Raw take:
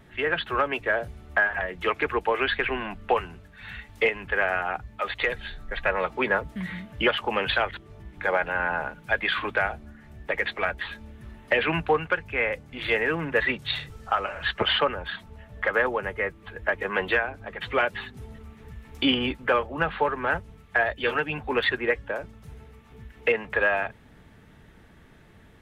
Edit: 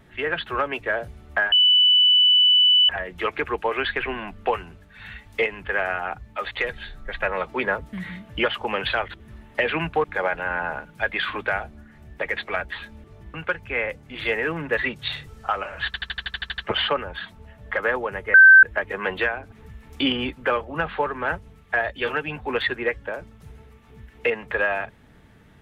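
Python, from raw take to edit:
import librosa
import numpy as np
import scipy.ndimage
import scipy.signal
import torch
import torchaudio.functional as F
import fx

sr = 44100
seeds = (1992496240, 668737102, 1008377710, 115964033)

y = fx.edit(x, sr, fx.insert_tone(at_s=1.52, length_s=1.37, hz=2980.0, db=-12.5),
    fx.swap(start_s=7.83, length_s=0.3, other_s=11.13, other_length_s=0.84),
    fx.stutter(start_s=14.49, slice_s=0.08, count=10),
    fx.bleep(start_s=16.25, length_s=0.29, hz=1550.0, db=-6.0),
    fx.cut(start_s=17.43, length_s=1.11), tone=tone)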